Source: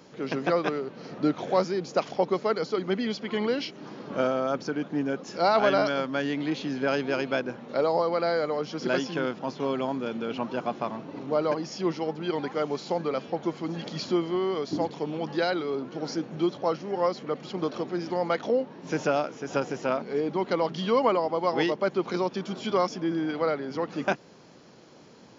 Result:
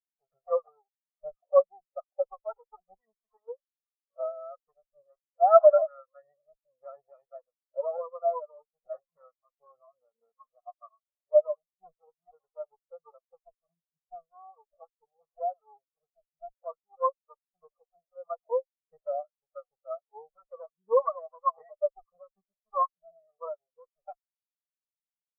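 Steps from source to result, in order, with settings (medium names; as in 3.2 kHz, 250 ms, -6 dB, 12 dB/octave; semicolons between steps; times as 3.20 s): comb filter that takes the minimum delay 1.6 ms; graphic EQ 125/1000/2000/4000 Hz -5/+11/+5/-6 dB; spectral contrast expander 4:1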